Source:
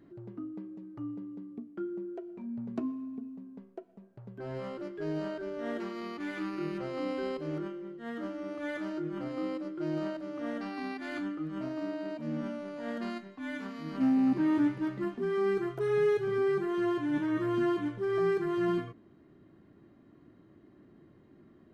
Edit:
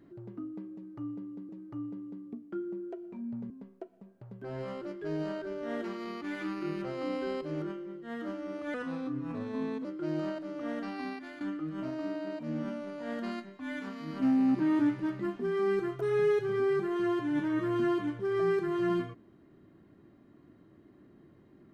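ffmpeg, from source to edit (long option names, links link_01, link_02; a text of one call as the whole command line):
ffmpeg -i in.wav -filter_complex "[0:a]asplit=6[link_01][link_02][link_03][link_04][link_05][link_06];[link_01]atrim=end=1.492[link_07];[link_02]atrim=start=0.738:end=2.752[link_08];[link_03]atrim=start=3.458:end=8.704[link_09];[link_04]atrim=start=8.7:end=9.63,asetpts=PTS-STARTPTS,asetrate=37044,aresample=44100[link_10];[link_05]atrim=start=9.626:end=11.19,asetpts=PTS-STARTPTS,afade=type=out:start_time=1.204:duration=0.36:silence=0.237137[link_11];[link_06]atrim=start=11.19,asetpts=PTS-STARTPTS,afade=type=in:duration=0.004:curve=hsin:silence=0.237137[link_12];[link_07][link_08]acrossfade=duration=0.004:curve1=hsin:curve2=hsin[link_13];[link_13][link_09]acrossfade=duration=0.004:curve1=hsin:curve2=hsin[link_14];[link_14][link_10]acrossfade=duration=0.004:curve1=hsin:curve2=hsin[link_15];[link_11][link_12]concat=n=2:v=0:a=1[link_16];[link_15][link_16]acrossfade=duration=0.004:curve1=hsin:curve2=hsin" out.wav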